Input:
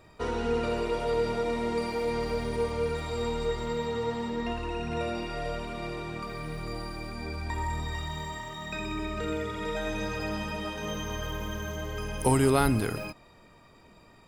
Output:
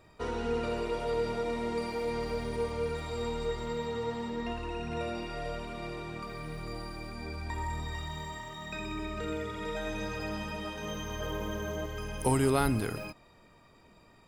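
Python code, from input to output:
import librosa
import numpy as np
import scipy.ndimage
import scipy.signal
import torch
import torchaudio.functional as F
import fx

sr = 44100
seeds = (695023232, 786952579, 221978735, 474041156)

y = fx.peak_eq(x, sr, hz=450.0, db=7.0, octaves=2.0, at=(11.2, 11.86))
y = y * librosa.db_to_amplitude(-3.5)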